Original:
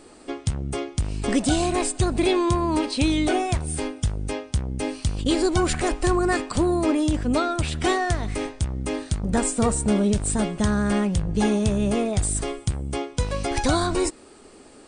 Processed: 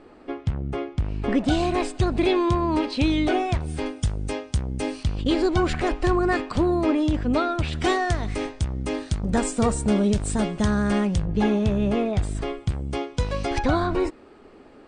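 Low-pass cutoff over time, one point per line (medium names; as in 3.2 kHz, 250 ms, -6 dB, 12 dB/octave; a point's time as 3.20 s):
2.3 kHz
from 1.48 s 4.1 kHz
from 3.86 s 8.6 kHz
from 5.03 s 3.9 kHz
from 7.73 s 6.7 kHz
from 11.25 s 3.3 kHz
from 12.69 s 5.2 kHz
from 13.59 s 2.5 kHz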